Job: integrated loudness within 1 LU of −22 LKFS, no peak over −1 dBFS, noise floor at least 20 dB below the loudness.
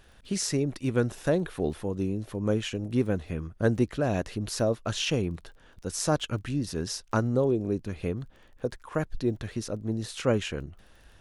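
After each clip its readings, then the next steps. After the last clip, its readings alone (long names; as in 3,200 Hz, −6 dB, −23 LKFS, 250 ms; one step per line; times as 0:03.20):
crackle rate 22 per second; integrated loudness −29.5 LKFS; sample peak −10.5 dBFS; target loudness −22.0 LKFS
→ click removal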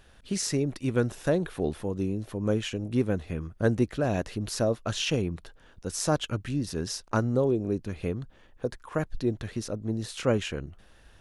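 crackle rate 0 per second; integrated loudness −29.5 LKFS; sample peak −10.5 dBFS; target loudness −22.0 LKFS
→ level +7.5 dB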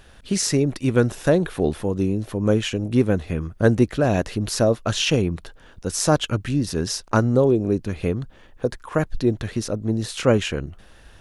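integrated loudness −22.0 LKFS; sample peak −3.0 dBFS; background noise floor −49 dBFS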